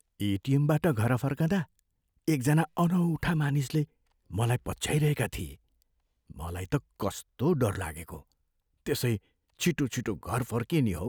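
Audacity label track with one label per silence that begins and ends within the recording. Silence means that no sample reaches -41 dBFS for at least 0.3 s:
1.640000	2.280000	silence
3.840000	4.310000	silence
5.530000	6.300000	silence
8.200000	8.860000	silence
9.170000	9.600000	silence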